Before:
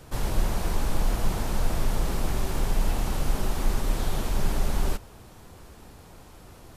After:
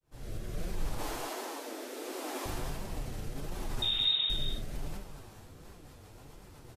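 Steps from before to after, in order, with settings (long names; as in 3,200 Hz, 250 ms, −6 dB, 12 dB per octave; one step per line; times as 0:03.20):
fade in at the beginning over 0.61 s
0:00.98–0:02.46: Butterworth high-pass 250 Hz 96 dB per octave
brickwall limiter −23 dBFS, peak gain reduction 10.5 dB
rotating-speaker cabinet horn 0.7 Hz, later 8 Hz, at 0:05.23
0:03.82–0:04.30: voice inversion scrambler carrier 3,700 Hz
single-tap delay 224 ms −8.5 dB
reverb whose tail is shaped and stops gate 110 ms flat, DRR 3.5 dB
flanger 1.4 Hz, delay 5 ms, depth 4.6 ms, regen +52%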